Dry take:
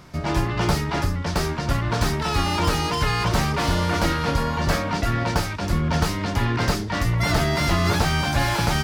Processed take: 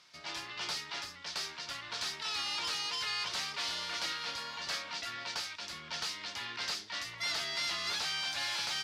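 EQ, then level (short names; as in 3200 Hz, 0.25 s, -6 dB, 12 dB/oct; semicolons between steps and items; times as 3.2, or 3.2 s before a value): band-pass 4100 Hz, Q 1.3; -3.5 dB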